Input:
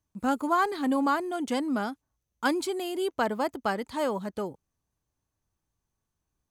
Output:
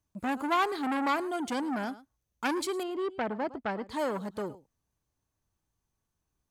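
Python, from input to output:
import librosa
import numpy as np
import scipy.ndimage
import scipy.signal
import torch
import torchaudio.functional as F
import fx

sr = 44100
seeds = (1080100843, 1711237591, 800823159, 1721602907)

p1 = fx.spacing_loss(x, sr, db_at_10k=25, at=(2.83, 3.9))
p2 = p1 + fx.echo_single(p1, sr, ms=109, db=-19.5, dry=0)
y = fx.transformer_sat(p2, sr, knee_hz=1700.0)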